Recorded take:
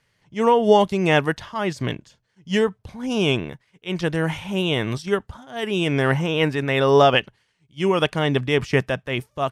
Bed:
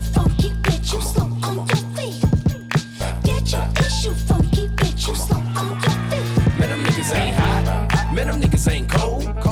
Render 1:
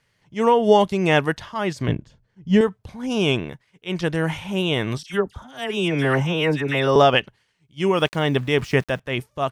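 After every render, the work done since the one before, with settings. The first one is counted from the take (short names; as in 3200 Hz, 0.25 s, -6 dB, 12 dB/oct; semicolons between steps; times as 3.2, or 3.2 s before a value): 1.88–2.61 tilt -3 dB/oct; 5.03–6.96 dispersion lows, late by 68 ms, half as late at 1600 Hz; 7.95–9 sample gate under -42.5 dBFS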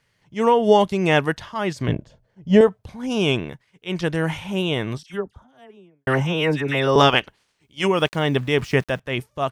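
1.93–2.81 bell 610 Hz +11.5 dB 0.82 oct; 4.44–6.07 studio fade out; 6.97–7.86 spectral limiter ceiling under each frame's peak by 14 dB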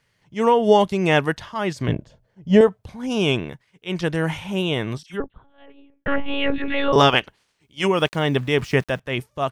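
5.2–6.93 monotone LPC vocoder at 8 kHz 280 Hz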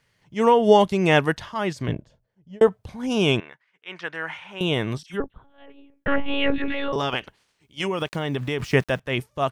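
1.48–2.61 fade out; 3.4–4.61 band-pass 1600 Hz, Q 1.3; 6.7–8.6 compressor, threshold -21 dBFS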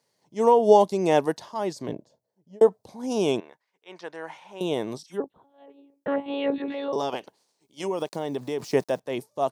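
HPF 280 Hz 12 dB/oct; band shelf 2000 Hz -12.5 dB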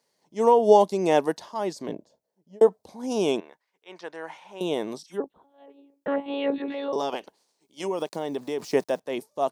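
bell 120 Hz -13 dB 0.45 oct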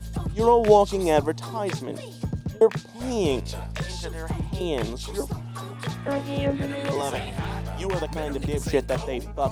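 add bed -13 dB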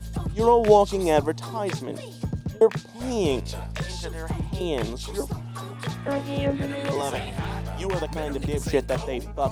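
nothing audible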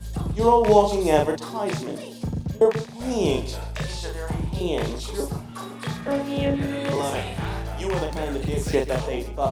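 doubler 39 ms -4 dB; echo 0.133 s -15 dB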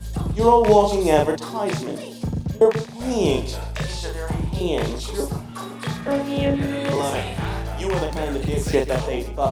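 gain +2.5 dB; limiter -3 dBFS, peak gain reduction 2.5 dB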